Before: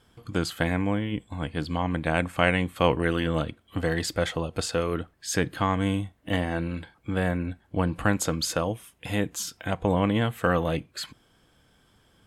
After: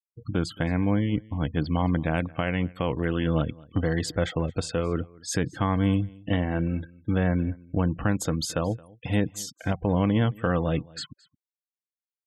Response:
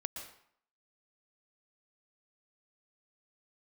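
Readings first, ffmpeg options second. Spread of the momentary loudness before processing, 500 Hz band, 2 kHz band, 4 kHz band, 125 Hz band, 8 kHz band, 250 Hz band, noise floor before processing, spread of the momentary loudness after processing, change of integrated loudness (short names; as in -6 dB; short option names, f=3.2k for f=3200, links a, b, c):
9 LU, -1.5 dB, -4.5 dB, -3.5 dB, +3.0 dB, -3.0 dB, +2.0 dB, -63 dBFS, 6 LU, +0.5 dB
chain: -filter_complex "[0:a]agate=range=-33dB:threshold=-52dB:ratio=3:detection=peak,afftfilt=real='re*gte(hypot(re,im),0.0141)':imag='im*gte(hypot(re,im),0.0141)':win_size=1024:overlap=0.75,equalizer=f=120:w=0.34:g=6.5,alimiter=limit=-12dB:level=0:latency=1:release=425,asplit=2[a][b];[b]aecho=0:1:220:0.0631[c];[a][c]amix=inputs=2:normalize=0,volume=-1dB"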